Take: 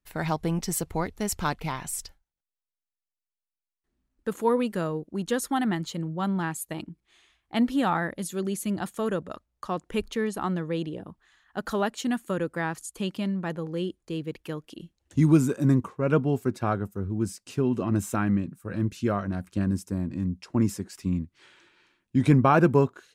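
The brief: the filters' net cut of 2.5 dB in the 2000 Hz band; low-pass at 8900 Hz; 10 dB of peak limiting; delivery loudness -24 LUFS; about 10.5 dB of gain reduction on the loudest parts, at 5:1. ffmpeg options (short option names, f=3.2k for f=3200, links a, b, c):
-af "lowpass=8.9k,equalizer=f=2k:t=o:g=-3.5,acompressor=threshold=-26dB:ratio=5,volume=13dB,alimiter=limit=-14dB:level=0:latency=1"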